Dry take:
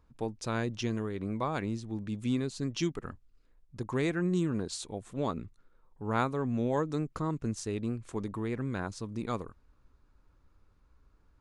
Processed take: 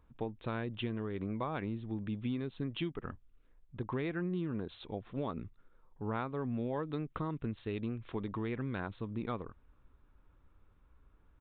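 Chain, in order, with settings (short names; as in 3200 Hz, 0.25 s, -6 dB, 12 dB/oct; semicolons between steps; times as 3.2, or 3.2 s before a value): 6.79–8.96 high shelf 3000 Hz +9 dB; compressor 4:1, threshold -33 dBFS, peak gain reduction 9 dB; downsampling 8000 Hz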